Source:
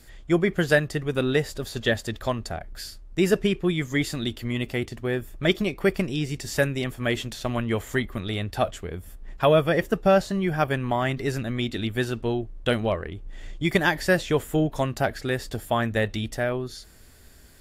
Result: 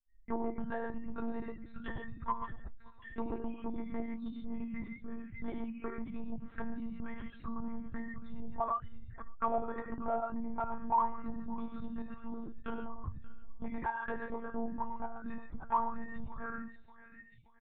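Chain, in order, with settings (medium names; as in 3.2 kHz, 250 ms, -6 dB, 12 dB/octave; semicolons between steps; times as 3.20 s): expander on every frequency bin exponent 3; compression 2.5:1, threshold -40 dBFS, peak gain reduction 14.5 dB; high-order bell 520 Hz -10.5 dB 1 oct; feedback delay 582 ms, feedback 41%, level -19.5 dB; gated-style reverb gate 170 ms flat, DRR 3 dB; saturation -38.5 dBFS, distortion -11 dB; monotone LPC vocoder at 8 kHz 230 Hz; touch-sensitive low-pass 270–2200 Hz down, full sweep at -32 dBFS; trim +7 dB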